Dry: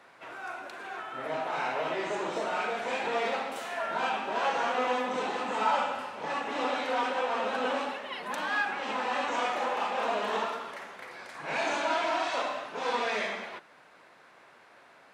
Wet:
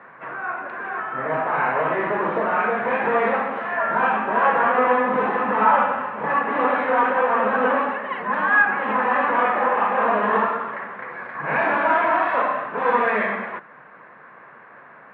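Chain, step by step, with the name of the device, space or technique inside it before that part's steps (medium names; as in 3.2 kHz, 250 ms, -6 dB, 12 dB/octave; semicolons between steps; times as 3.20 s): bass cabinet (cabinet simulation 69–2200 Hz, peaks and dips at 140 Hz +9 dB, 210 Hz +8 dB, 480 Hz +4 dB, 1.1 kHz +8 dB, 1.7 kHz +7 dB); trim +7 dB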